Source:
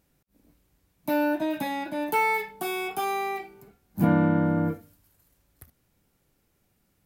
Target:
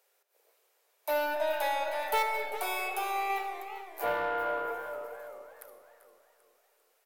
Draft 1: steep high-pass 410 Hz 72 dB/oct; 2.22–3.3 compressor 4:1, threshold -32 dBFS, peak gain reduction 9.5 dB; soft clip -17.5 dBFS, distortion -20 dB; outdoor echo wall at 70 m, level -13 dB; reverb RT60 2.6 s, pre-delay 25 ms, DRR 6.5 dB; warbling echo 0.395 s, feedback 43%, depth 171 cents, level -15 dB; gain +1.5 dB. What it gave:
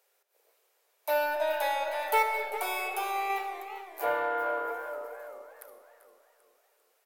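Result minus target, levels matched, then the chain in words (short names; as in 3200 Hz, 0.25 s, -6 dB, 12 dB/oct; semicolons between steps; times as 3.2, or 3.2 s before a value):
soft clip: distortion -8 dB
steep high-pass 410 Hz 72 dB/oct; 2.22–3.3 compressor 4:1, threshold -32 dBFS, peak gain reduction 9.5 dB; soft clip -24.5 dBFS, distortion -12 dB; outdoor echo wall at 70 m, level -13 dB; reverb RT60 2.6 s, pre-delay 25 ms, DRR 6.5 dB; warbling echo 0.395 s, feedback 43%, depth 171 cents, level -15 dB; gain +1.5 dB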